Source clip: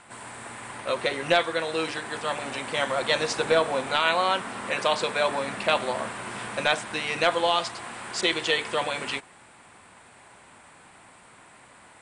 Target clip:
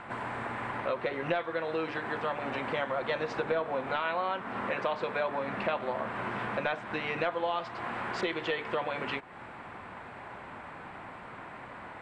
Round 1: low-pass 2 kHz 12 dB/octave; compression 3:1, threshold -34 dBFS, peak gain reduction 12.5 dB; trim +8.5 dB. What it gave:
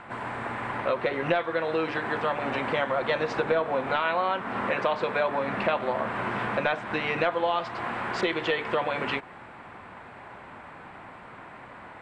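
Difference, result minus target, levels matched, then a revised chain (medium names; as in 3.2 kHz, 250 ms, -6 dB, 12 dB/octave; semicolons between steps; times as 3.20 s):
compression: peak gain reduction -5.5 dB
low-pass 2 kHz 12 dB/octave; compression 3:1, threshold -42 dBFS, peak gain reduction 18 dB; trim +8.5 dB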